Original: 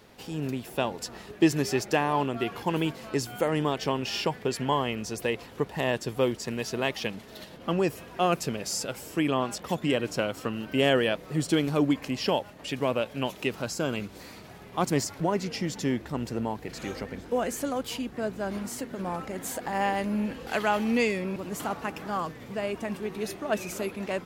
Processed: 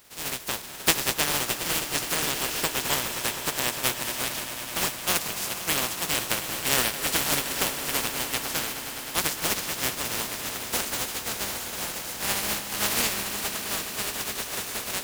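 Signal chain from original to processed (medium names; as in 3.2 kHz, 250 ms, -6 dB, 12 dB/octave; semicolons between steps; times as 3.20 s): spectral contrast reduction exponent 0.18; granular stretch 0.62×, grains 136 ms; echo with a slow build-up 104 ms, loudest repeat 5, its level -14.5 dB; trim +1 dB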